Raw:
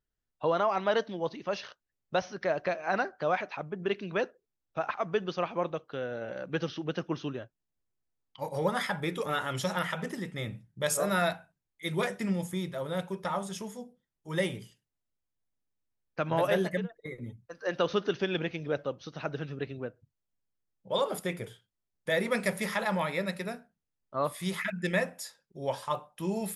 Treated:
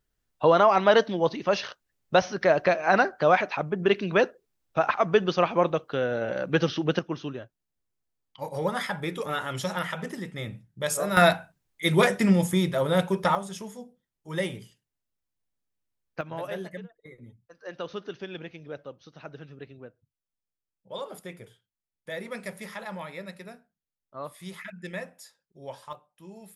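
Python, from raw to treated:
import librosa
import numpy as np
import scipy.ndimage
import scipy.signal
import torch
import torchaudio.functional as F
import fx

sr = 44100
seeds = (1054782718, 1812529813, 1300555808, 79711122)

y = fx.gain(x, sr, db=fx.steps((0.0, 8.5), (6.99, 1.0), (11.17, 10.0), (13.35, 0.5), (16.21, -7.5), (25.93, -14.0)))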